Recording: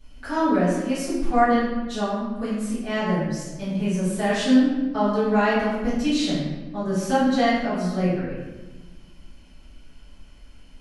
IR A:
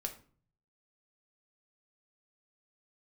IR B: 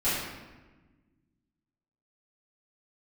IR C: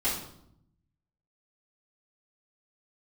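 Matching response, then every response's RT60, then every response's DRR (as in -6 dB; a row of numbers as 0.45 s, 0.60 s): B; 0.45 s, 1.2 s, 0.75 s; 4.0 dB, -14.5 dB, -11.0 dB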